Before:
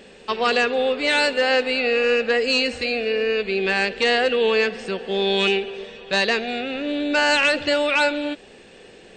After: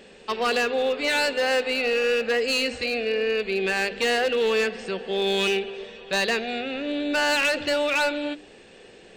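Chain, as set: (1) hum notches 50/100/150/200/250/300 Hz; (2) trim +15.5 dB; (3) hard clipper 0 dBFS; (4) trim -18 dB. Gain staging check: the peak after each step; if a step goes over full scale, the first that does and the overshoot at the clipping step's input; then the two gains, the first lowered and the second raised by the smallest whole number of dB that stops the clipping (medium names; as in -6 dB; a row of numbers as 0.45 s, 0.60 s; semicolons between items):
-8.5 dBFS, +7.0 dBFS, 0.0 dBFS, -18.0 dBFS; step 2, 7.0 dB; step 2 +8.5 dB, step 4 -11 dB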